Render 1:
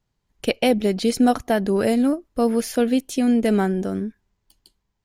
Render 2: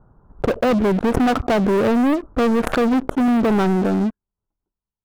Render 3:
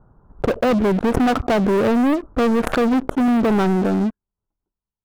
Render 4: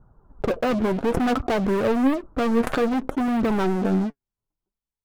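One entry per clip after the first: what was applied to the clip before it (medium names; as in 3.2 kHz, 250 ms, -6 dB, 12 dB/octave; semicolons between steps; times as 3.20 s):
elliptic low-pass 1.4 kHz, stop band 40 dB; waveshaping leveller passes 5; swell ahead of each attack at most 55 dB/s; trim -6.5 dB
no audible change
flange 0.58 Hz, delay 0.4 ms, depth 8.4 ms, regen +50%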